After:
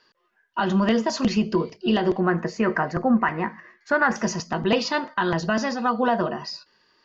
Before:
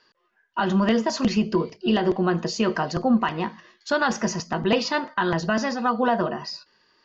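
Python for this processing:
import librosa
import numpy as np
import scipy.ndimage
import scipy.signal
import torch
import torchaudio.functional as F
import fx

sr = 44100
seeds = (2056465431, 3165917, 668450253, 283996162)

y = fx.high_shelf_res(x, sr, hz=2600.0, db=-8.5, q=3.0, at=(2.2, 4.16))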